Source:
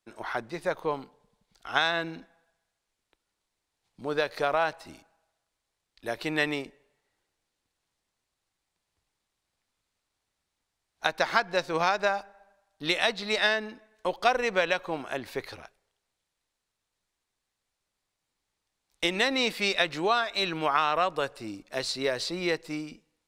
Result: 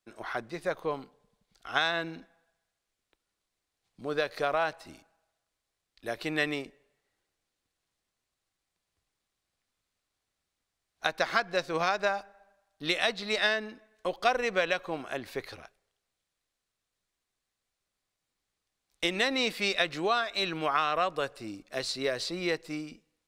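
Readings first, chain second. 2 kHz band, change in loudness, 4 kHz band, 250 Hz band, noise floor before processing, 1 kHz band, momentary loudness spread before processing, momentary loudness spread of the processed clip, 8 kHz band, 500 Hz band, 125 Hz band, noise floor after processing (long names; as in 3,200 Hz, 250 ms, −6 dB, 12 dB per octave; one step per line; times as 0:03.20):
−2.0 dB, −2.0 dB, −2.0 dB, −2.0 dB, −84 dBFS, −3.0 dB, 13 LU, 13 LU, −2.0 dB, −2.0 dB, −2.0 dB, −85 dBFS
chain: notch filter 900 Hz, Q 9.2
level −2 dB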